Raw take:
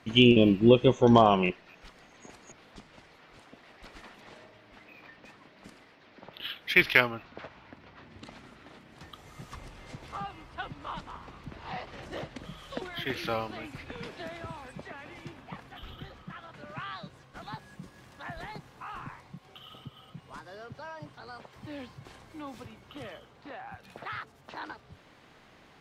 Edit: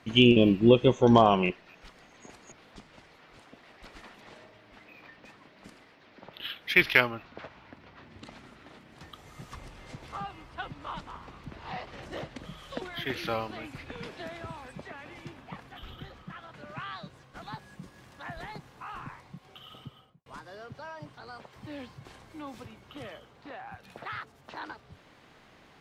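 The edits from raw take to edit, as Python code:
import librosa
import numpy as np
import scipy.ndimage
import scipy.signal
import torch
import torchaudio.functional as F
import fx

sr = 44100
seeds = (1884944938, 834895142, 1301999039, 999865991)

y = fx.studio_fade_out(x, sr, start_s=19.86, length_s=0.4)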